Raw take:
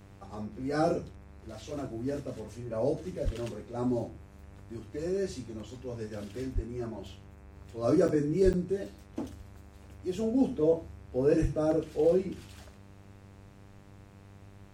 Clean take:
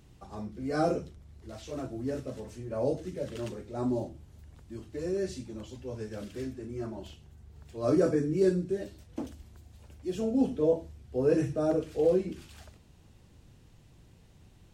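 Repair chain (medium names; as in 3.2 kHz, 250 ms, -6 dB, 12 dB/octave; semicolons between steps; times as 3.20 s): de-hum 98.8 Hz, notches 27; de-plosive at 3.24/6.54/8.44/11.41 s; interpolate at 8.08/8.53 s, 8 ms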